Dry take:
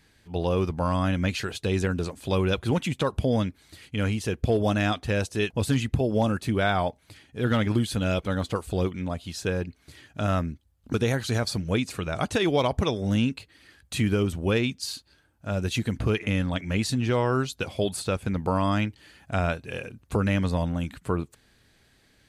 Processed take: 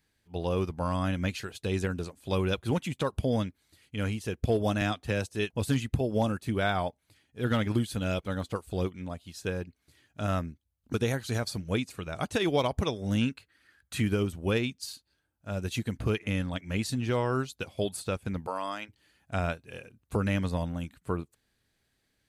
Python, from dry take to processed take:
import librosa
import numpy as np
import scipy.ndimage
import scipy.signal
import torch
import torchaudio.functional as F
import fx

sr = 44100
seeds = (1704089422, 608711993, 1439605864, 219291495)

y = fx.band_squash(x, sr, depth_pct=40, at=(4.81, 5.3))
y = fx.peak_eq(y, sr, hz=1500.0, db=10.5, octaves=0.77, at=(13.21, 14.0))
y = fx.highpass(y, sr, hz=470.0, slope=12, at=(18.46, 18.88), fade=0.02)
y = fx.high_shelf(y, sr, hz=11000.0, db=9.0)
y = fx.upward_expand(y, sr, threshold_db=-43.0, expansion=1.5)
y = y * 10.0 ** (-2.5 / 20.0)